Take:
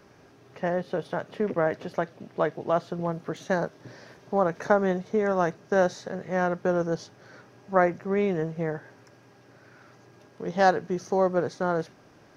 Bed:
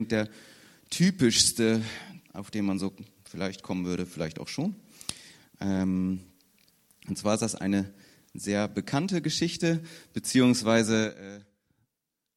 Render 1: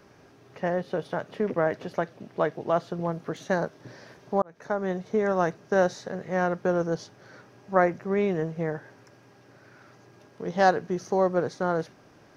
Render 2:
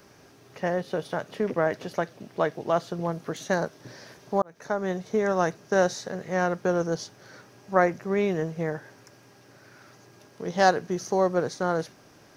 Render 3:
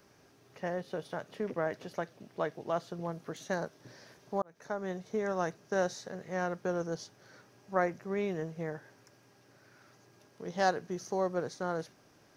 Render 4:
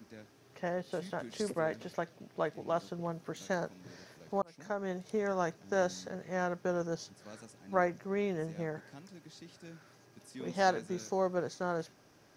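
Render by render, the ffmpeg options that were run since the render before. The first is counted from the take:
ffmpeg -i in.wav -filter_complex "[0:a]asplit=2[link_01][link_02];[link_01]atrim=end=4.42,asetpts=PTS-STARTPTS,afade=type=out:start_time=4.416:duration=0.004:curve=hsin[link_03];[link_02]atrim=start=4.42,asetpts=PTS-STARTPTS,afade=type=in:duration=0.71[link_04];[link_03][link_04]concat=n=2:v=0:a=1" out.wav
ffmpeg -i in.wav -af "highshelf=frequency=4500:gain=11.5" out.wav
ffmpeg -i in.wav -af "volume=-8.5dB" out.wav
ffmpeg -i in.wav -i bed.wav -filter_complex "[1:a]volume=-25dB[link_01];[0:a][link_01]amix=inputs=2:normalize=0" out.wav

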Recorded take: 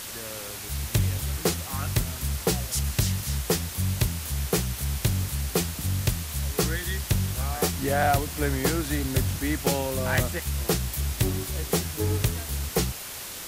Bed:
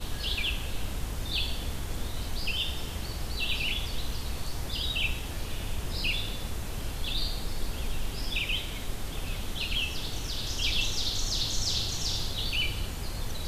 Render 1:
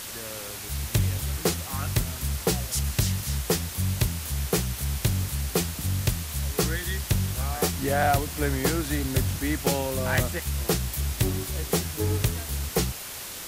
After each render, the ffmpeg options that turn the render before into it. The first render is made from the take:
ffmpeg -i in.wav -af anull out.wav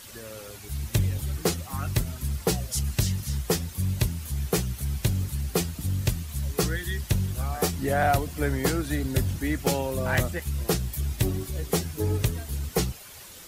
ffmpeg -i in.wav -af "afftdn=noise_reduction=10:noise_floor=-37" out.wav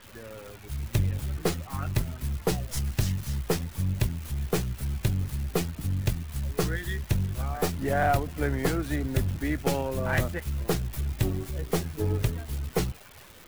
ffmpeg -i in.wav -filter_complex "[0:a]aeval=exprs='if(lt(val(0),0),0.708*val(0),val(0))':channel_layout=same,acrossover=split=3300[link_01][link_02];[link_02]acrusher=bits=4:dc=4:mix=0:aa=0.000001[link_03];[link_01][link_03]amix=inputs=2:normalize=0" out.wav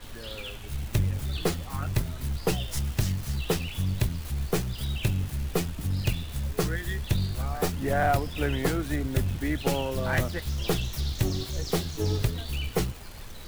ffmpeg -i in.wav -i bed.wav -filter_complex "[1:a]volume=-9.5dB[link_01];[0:a][link_01]amix=inputs=2:normalize=0" out.wav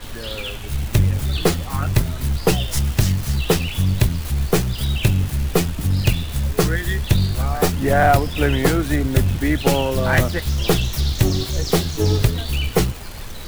ffmpeg -i in.wav -af "volume=9.5dB,alimiter=limit=-3dB:level=0:latency=1" out.wav

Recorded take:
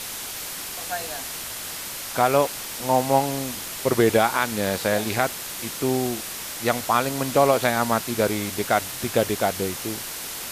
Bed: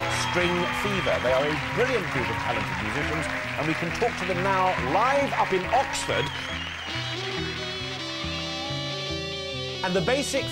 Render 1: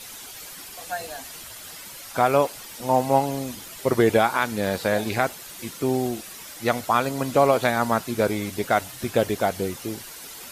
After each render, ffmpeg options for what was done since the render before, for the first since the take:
ffmpeg -i in.wav -af "afftdn=noise_reduction=10:noise_floor=-34" out.wav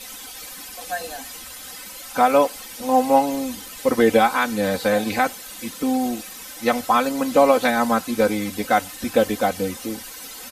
ffmpeg -i in.wav -af "aecho=1:1:3.9:0.95" out.wav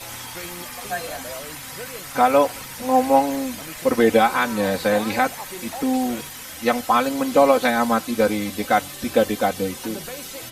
ffmpeg -i in.wav -i bed.wav -filter_complex "[1:a]volume=-12.5dB[link_01];[0:a][link_01]amix=inputs=2:normalize=0" out.wav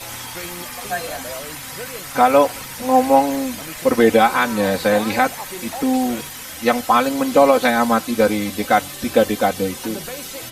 ffmpeg -i in.wav -af "volume=3dB,alimiter=limit=-1dB:level=0:latency=1" out.wav

